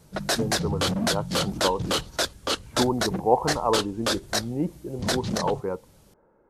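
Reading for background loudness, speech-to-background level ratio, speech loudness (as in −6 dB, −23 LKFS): −27.5 LKFS, −1.5 dB, −29.0 LKFS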